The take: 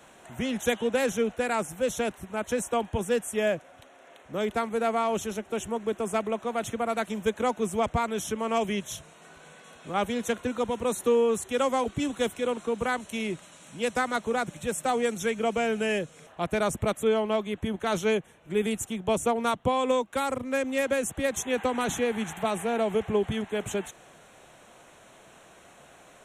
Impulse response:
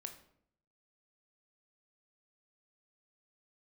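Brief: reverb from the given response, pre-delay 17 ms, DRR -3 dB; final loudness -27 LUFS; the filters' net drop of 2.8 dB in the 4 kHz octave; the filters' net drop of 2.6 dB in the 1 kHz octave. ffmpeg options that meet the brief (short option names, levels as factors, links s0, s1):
-filter_complex "[0:a]equalizer=f=1000:t=o:g=-3.5,equalizer=f=4000:t=o:g=-3.5,asplit=2[s0][s1];[1:a]atrim=start_sample=2205,adelay=17[s2];[s1][s2]afir=irnorm=-1:irlink=0,volume=2.24[s3];[s0][s3]amix=inputs=2:normalize=0,volume=0.75"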